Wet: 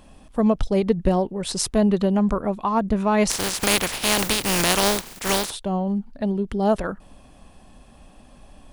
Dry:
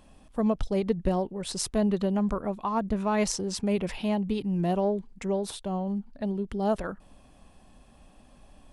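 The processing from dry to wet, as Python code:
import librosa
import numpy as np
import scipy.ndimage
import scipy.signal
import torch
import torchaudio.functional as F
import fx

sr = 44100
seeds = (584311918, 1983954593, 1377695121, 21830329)

y = fx.spec_flatten(x, sr, power=0.28, at=(3.29, 5.49), fade=0.02)
y = F.gain(torch.from_numpy(y), 6.5).numpy()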